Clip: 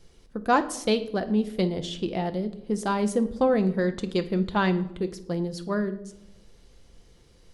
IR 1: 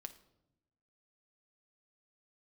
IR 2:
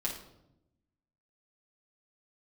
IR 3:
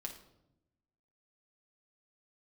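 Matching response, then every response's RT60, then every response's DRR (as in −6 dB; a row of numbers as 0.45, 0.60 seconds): 1; 0.90, 0.85, 0.85 seconds; 8.0, −4.0, 1.5 decibels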